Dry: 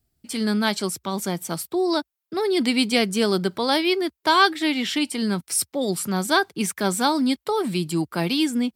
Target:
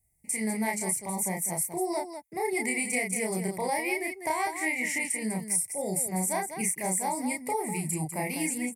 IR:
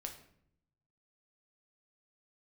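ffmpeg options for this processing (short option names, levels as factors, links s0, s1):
-filter_complex "[0:a]firequalizer=gain_entry='entry(160,0);entry(270,-10);entry(500,-2);entry(870,3);entry(1400,-27);entry(2000,12);entry(3300,-25);entry(6000,1);entry(9600,14);entry(14000,3)':delay=0.05:min_phase=1,acompressor=threshold=0.0794:ratio=12,asplit=2[s0][s1];[s1]aecho=0:1:32.07|198.3:0.794|0.398[s2];[s0][s2]amix=inputs=2:normalize=0,volume=0.562"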